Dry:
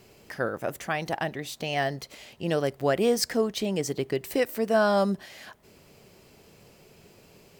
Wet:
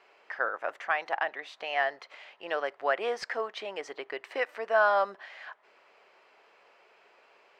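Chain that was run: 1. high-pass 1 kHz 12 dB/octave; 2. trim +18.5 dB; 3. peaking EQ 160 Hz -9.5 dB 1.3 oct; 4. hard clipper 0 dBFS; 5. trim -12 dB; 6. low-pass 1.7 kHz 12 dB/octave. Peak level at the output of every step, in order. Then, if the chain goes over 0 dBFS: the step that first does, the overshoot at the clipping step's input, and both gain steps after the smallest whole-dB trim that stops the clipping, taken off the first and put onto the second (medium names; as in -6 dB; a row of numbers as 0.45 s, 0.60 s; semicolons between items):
-12.5 dBFS, +6.0 dBFS, +6.0 dBFS, 0.0 dBFS, -12.0 dBFS, -12.5 dBFS; step 2, 6.0 dB; step 2 +12.5 dB, step 5 -6 dB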